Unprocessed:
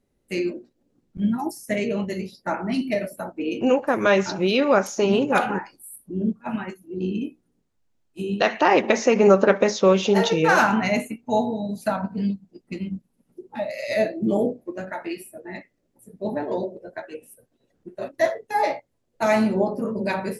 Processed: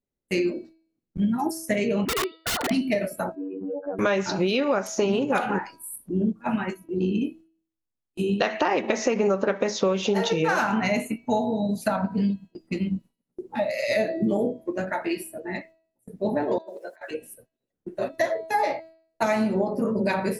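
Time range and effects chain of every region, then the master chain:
0:02.05–0:02.71: three sine waves on the formant tracks + wrap-around overflow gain 25 dB
0:03.35–0:03.99: expanding power law on the bin magnitudes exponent 2.8 + downward compressor 3 to 1, threshold −32 dBFS + phases set to zero 95.2 Hz
0:16.58–0:17.11: high-pass filter 680 Hz + high-shelf EQ 5,800 Hz +8.5 dB + compressor whose output falls as the input rises −43 dBFS, ratio −0.5
whole clip: noise gate with hold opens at −40 dBFS; hum removal 324.4 Hz, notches 15; downward compressor 6 to 1, threshold −24 dBFS; level +4 dB

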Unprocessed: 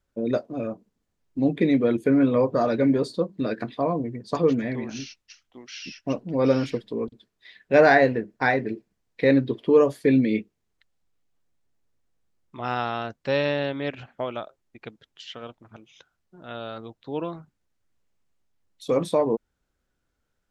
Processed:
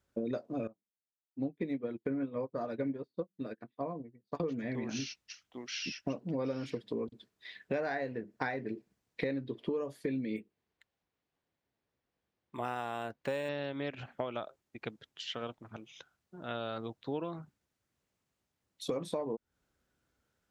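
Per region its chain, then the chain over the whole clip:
0:00.67–0:04.40: running median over 5 samples + high-shelf EQ 5,300 Hz −9.5 dB + expander for the loud parts 2.5 to 1, over −41 dBFS
0:10.36–0:13.49: bass and treble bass −5 dB, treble −4 dB + notch filter 1,300 Hz, Q 13 + linearly interpolated sample-rate reduction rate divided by 4×
whole clip: high-pass filter 64 Hz; downward compressor 10 to 1, threshold −32 dBFS

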